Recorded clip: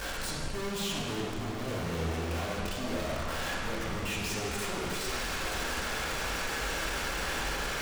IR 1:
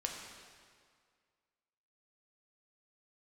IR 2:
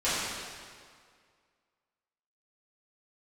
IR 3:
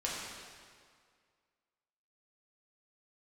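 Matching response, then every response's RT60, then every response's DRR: 3; 2.0, 2.0, 2.0 seconds; 0.0, −14.5, −6.0 decibels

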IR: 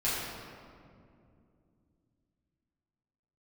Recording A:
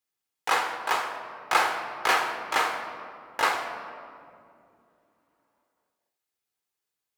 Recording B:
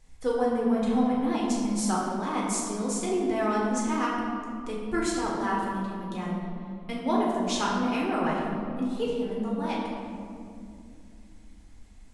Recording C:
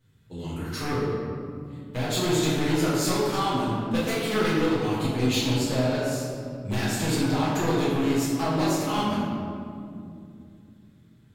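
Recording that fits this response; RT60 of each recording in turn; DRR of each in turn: C; 2.6, 2.5, 2.5 seconds; 4.0, −5.0, −10.5 decibels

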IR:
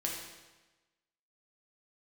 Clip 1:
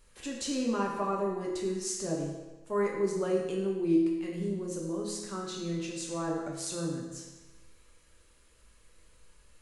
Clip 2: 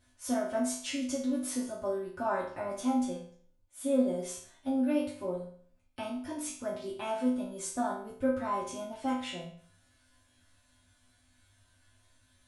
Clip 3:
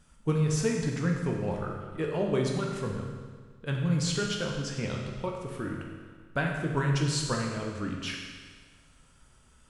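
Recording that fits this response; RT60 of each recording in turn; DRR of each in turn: 1; 1.1, 0.55, 1.6 seconds; −2.5, −9.5, −0.5 decibels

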